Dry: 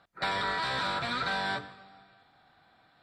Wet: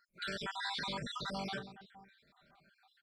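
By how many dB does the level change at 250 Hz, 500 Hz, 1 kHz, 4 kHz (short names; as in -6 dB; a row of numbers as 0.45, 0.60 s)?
-3.5, -7.5, -11.5, -6.0 dB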